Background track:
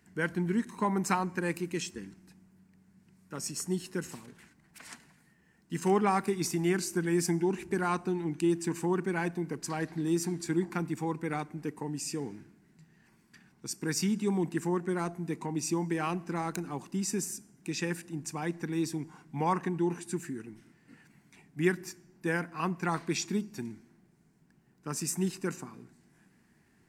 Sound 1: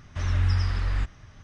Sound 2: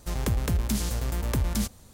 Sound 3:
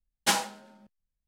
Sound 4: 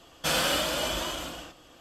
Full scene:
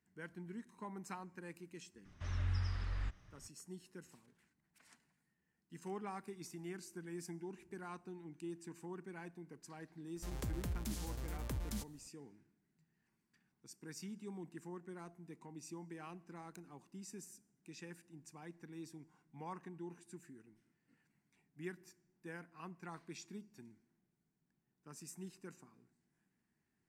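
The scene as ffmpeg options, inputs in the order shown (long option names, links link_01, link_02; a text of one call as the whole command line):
ffmpeg -i bed.wav -i cue0.wav -i cue1.wav -filter_complex "[0:a]volume=-18.5dB[link_01];[1:a]atrim=end=1.43,asetpts=PTS-STARTPTS,volume=-13.5dB,afade=type=in:duration=0.004:curve=hsin,afade=type=out:start_time=1.426:duration=0.004:curve=hsin,adelay=2050[link_02];[2:a]atrim=end=1.93,asetpts=PTS-STARTPTS,volume=-15dB,afade=type=in:duration=0.004:curve=hsin,afade=type=out:start_time=1.926:duration=0.004:curve=hsin,adelay=10160[link_03];[link_01][link_02][link_03]amix=inputs=3:normalize=0" out.wav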